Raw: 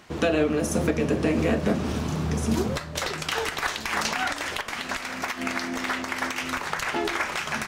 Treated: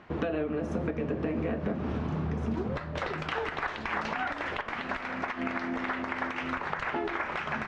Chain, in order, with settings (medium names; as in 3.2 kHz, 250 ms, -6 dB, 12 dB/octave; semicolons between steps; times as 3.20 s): low-pass 2 kHz 12 dB/octave; compression 5:1, threshold -28 dBFS, peak gain reduction 9.5 dB